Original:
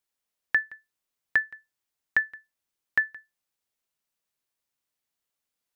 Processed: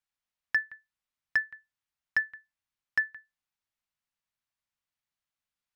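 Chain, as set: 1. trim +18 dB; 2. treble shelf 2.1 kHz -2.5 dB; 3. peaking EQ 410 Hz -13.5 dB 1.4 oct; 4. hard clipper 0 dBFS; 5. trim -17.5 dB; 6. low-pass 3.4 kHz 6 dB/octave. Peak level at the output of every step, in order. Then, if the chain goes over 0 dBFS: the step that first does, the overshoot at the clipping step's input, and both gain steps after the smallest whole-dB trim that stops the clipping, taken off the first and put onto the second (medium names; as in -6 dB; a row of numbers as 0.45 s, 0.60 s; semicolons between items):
+6.0 dBFS, +5.5 dBFS, +4.5 dBFS, 0.0 dBFS, -17.5 dBFS, -17.5 dBFS; step 1, 4.5 dB; step 1 +13 dB, step 5 -12.5 dB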